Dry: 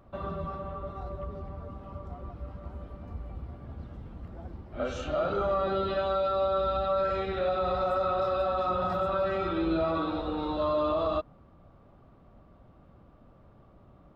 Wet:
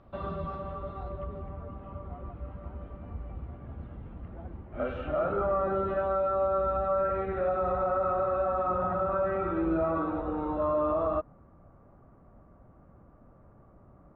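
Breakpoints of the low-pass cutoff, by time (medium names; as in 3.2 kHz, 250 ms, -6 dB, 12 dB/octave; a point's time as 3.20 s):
low-pass 24 dB/octave
0.68 s 4.9 kHz
1.51 s 2.9 kHz
4.41 s 2.9 kHz
5.66 s 1.9 kHz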